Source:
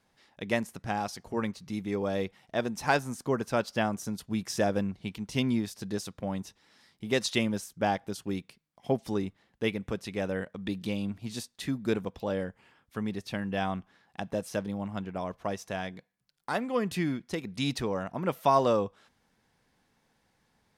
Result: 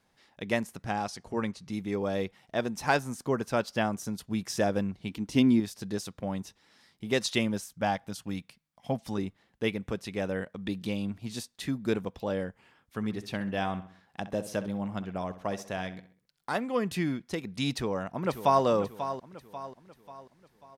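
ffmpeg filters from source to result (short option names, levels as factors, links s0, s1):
-filter_complex "[0:a]asettb=1/sr,asplit=3[s0][s1][s2];[s0]atrim=end=0.934[s3];[s1]atrim=start=0.93:end=1.72,asetpts=PTS-STARTPTS,afade=t=in:d=0.004:c=qsin,afade=t=out:st=0.786:d=0.004:c=qsin,lowpass=f=11000:w=0.5412,lowpass=f=11000:w=1.3066[s4];[s2]atrim=start=1.716[s5];[s3][s4]acrossfade=d=0.004:c1=hsin:c2=qsin[s6];[s6][s5]acrossfade=d=0.004:c1=qsin:c2=hsin,asettb=1/sr,asplit=3[s7][s8][s9];[s7]atrim=end=5.094[s10];[s8]atrim=start=5.09:end=5.6,asetpts=PTS-STARTPTS,afade=t=in:d=0.004:c=qsin,afade=t=out:st=0.506:d=0.004:c=qsin,equalizer=f=290:t=o:w=0.54:g=11[s11];[s9]atrim=start=5.596[s12];[s10][s11]acrossfade=d=0.004:c1=hsin:c2=qsin[s13];[s13][s12]acrossfade=d=0.004:c1=qsin:c2=hsin,asettb=1/sr,asplit=3[s14][s15][s16];[s14]atrim=end=7.624[s17];[s15]atrim=start=7.62:end=9.18,asetpts=PTS-STARTPTS,afade=t=in:d=0.004:c=qsin,afade=t=out:st=1.556:d=0.004:c=qsin,equalizer=f=380:t=o:w=0.42:g=-12.5[s18];[s16]atrim=start=9.176[s19];[s17][s18]acrossfade=d=0.004:c1=hsin:c2=qsin[s20];[s20][s19]acrossfade=d=0.004:c1=qsin:c2=hsin,asplit=3[s21][s22][s23];[s21]afade=t=out:st=13:d=0.02[s24];[s22]asplit=2[s25][s26];[s26]adelay=65,lowpass=f=4200:p=1,volume=0.224,asplit=2[s27][s28];[s28]adelay=65,lowpass=f=4200:p=1,volume=0.44,asplit=2[s29][s30];[s30]adelay=65,lowpass=f=4200:p=1,volume=0.44,asplit=2[s31][s32];[s32]adelay=65,lowpass=f=4200:p=1,volume=0.44[s33];[s25][s27][s29][s31][s33]amix=inputs=5:normalize=0,afade=t=in:st=13:d=0.02,afade=t=out:st=16.56:d=0.02[s34];[s23]afade=t=in:st=16.56:d=0.02[s35];[s24][s34][s35]amix=inputs=3:normalize=0,asplit=2[s36][s37];[s37]afade=t=in:st=17.7:d=0.01,afade=t=out:st=18.65:d=0.01,aecho=0:1:540|1080|1620|2160|2700:0.298538|0.134342|0.060454|0.0272043|0.0122419[s38];[s36][s38]amix=inputs=2:normalize=0"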